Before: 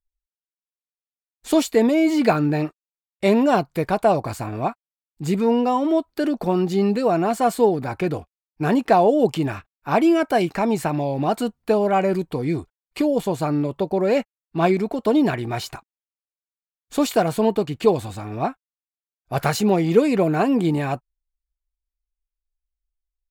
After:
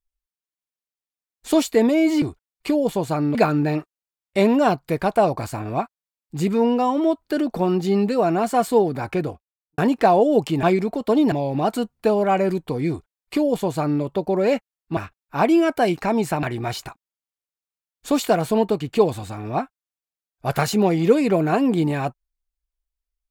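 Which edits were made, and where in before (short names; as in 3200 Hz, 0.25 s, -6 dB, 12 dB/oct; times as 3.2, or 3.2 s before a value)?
7.98–8.65 studio fade out
9.5–10.96 swap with 14.61–15.3
12.53–13.66 copy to 2.22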